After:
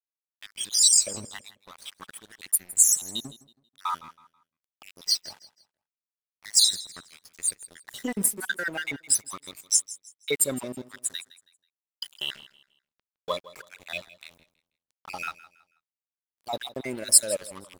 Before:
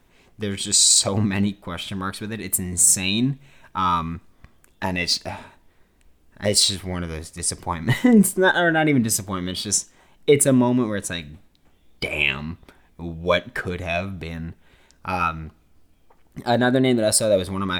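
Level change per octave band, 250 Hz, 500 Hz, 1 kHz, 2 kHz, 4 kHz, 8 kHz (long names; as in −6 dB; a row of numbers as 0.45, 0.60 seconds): −19.0, −14.5, −12.5, −11.0, −4.0, −1.5 decibels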